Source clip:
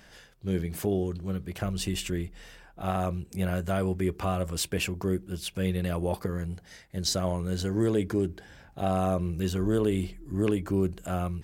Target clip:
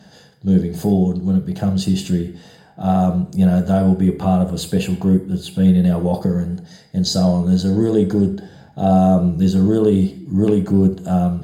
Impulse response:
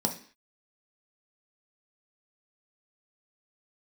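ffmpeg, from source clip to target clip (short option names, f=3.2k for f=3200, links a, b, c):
-filter_complex "[0:a]asettb=1/sr,asplit=3[a][b][c];[a]atrim=end=3.974[d];[b]atrim=start=3.97:end=5.98,asetpts=PTS-STARTPTS,afade=t=in:d=0.004:c=qsin,afade=t=out:st=2.006:d=0.004:c=qsin,equalizer=f=5.4k:w=3.8:g=-9.5[e];[c]atrim=start=5.976[f];[d][e]acrossfade=d=0.004:c1=hsin:c2=qsin[g];[g][f]acrossfade=d=0.004:c1=qsin:c2=hsin[h];[1:a]atrim=start_sample=2205,asetrate=37485,aresample=44100[i];[h][i]afir=irnorm=-1:irlink=0,volume=-3dB"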